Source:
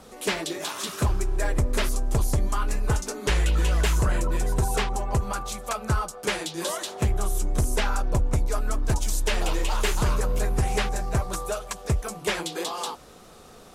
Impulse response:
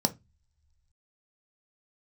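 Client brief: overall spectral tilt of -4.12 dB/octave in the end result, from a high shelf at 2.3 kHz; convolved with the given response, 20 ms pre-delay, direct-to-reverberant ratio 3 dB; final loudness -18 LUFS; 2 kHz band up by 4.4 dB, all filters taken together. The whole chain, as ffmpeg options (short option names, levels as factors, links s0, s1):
-filter_complex "[0:a]equalizer=f=2000:t=o:g=3.5,highshelf=f=2300:g=4,asplit=2[s0][s1];[1:a]atrim=start_sample=2205,adelay=20[s2];[s1][s2]afir=irnorm=-1:irlink=0,volume=0.282[s3];[s0][s3]amix=inputs=2:normalize=0,volume=1.88"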